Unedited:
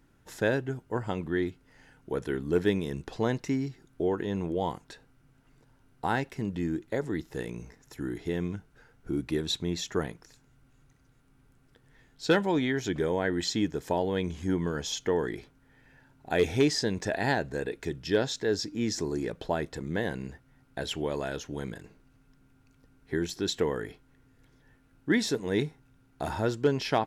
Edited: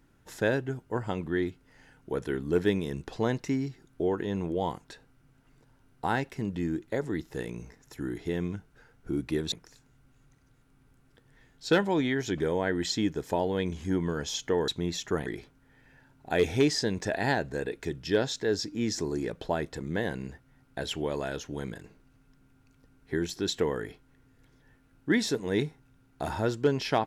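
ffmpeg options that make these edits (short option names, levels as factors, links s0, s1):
-filter_complex "[0:a]asplit=4[s0][s1][s2][s3];[s0]atrim=end=9.522[s4];[s1]atrim=start=10.098:end=15.262[s5];[s2]atrim=start=9.518:end=10.102[s6];[s3]atrim=start=15.258[s7];[s4][s5]acrossfade=d=0.004:c1=hsin:c2=hsin[s8];[s8][s6]acrossfade=d=0.004:c1=hsin:c2=hsin[s9];[s9][s7]acrossfade=d=0.004:c1=hsin:c2=hsin"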